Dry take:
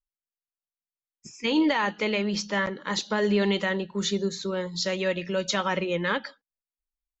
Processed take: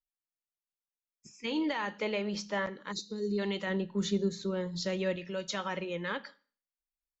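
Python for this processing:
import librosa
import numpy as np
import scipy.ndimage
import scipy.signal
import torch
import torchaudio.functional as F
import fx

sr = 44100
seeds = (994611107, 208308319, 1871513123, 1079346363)

y = fx.low_shelf(x, sr, hz=450.0, db=9.0, at=(3.67, 5.16))
y = fx.rev_schroeder(y, sr, rt60_s=0.44, comb_ms=27, drr_db=18.5)
y = fx.dynamic_eq(y, sr, hz=640.0, q=0.95, threshold_db=-40.0, ratio=4.0, max_db=6, at=(2.0, 2.67))
y = fx.spec_box(y, sr, start_s=2.92, length_s=0.47, low_hz=490.0, high_hz=3600.0, gain_db=-22)
y = y * 10.0 ** (-9.0 / 20.0)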